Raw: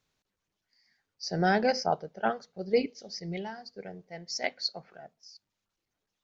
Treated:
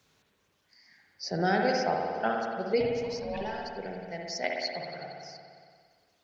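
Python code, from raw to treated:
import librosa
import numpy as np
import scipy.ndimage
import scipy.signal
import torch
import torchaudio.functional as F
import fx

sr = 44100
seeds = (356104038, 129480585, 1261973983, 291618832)

y = scipy.signal.sosfilt(scipy.signal.butter(2, 55.0, 'highpass', fs=sr, output='sos'), x)
y = fx.ring_mod(y, sr, carrier_hz=390.0, at=(2.8, 3.41))
y = fx.rev_spring(y, sr, rt60_s=1.6, pass_ms=(57,), chirp_ms=35, drr_db=0.0)
y = fx.band_squash(y, sr, depth_pct=40)
y = F.gain(torch.from_numpy(y), -1.5).numpy()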